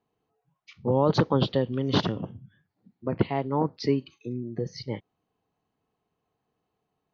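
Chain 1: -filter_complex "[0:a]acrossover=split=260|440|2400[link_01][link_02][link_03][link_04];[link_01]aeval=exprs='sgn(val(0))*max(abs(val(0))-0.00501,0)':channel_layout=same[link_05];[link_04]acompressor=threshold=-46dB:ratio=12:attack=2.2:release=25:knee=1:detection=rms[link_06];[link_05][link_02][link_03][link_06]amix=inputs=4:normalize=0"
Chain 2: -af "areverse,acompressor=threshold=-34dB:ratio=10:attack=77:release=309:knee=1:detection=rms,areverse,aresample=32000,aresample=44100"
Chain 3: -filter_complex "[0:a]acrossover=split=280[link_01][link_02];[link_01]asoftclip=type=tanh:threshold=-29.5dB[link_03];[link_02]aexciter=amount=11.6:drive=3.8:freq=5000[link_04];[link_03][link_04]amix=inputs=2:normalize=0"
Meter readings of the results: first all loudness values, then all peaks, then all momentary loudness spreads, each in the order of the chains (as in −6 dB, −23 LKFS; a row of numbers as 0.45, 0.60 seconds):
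−28.0, −38.0, −28.0 LKFS; −9.5, −19.0, −10.5 dBFS; 14, 8, 13 LU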